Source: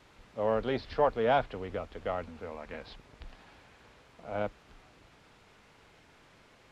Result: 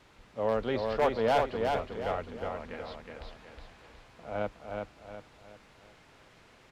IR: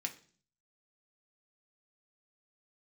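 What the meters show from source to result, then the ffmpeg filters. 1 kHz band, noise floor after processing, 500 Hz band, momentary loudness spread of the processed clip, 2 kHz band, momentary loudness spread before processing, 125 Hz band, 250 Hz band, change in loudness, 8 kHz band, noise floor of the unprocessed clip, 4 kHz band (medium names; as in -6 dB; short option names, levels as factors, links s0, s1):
+1.0 dB, -59 dBFS, +1.5 dB, 21 LU, +1.5 dB, 18 LU, +1.0 dB, +1.5 dB, +0.5 dB, no reading, -61 dBFS, +2.5 dB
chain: -af "aeval=exprs='0.119*(abs(mod(val(0)/0.119+3,4)-2)-1)':c=same,aecho=1:1:366|732|1098|1464|1830:0.631|0.246|0.096|0.0374|0.0146"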